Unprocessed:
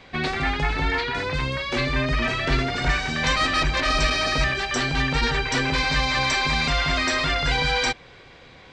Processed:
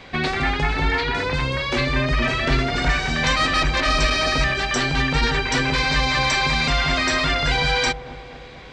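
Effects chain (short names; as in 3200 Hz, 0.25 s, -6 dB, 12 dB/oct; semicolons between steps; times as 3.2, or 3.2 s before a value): in parallel at -1 dB: compressor, threshold -30 dBFS, peak gain reduction 13 dB; on the sum: dark delay 0.233 s, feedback 55%, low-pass 850 Hz, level -11.5 dB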